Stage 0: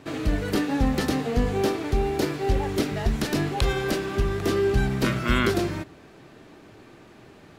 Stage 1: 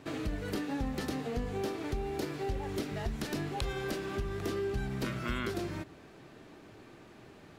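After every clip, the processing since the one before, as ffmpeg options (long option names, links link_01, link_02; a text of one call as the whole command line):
ffmpeg -i in.wav -af "acompressor=threshold=-30dB:ratio=2.5,volume=-4.5dB" out.wav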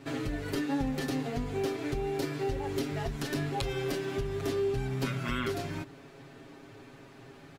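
ffmpeg -i in.wav -af "aecho=1:1:7.3:0.91" out.wav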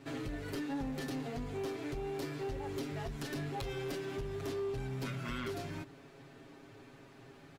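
ffmpeg -i in.wav -af "asoftclip=type=tanh:threshold=-27.5dB,volume=-4.5dB" out.wav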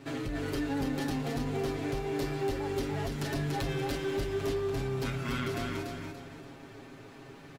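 ffmpeg -i in.wav -af "aecho=1:1:288|576|864|1152|1440:0.668|0.241|0.0866|0.0312|0.0112,volume=4.5dB" out.wav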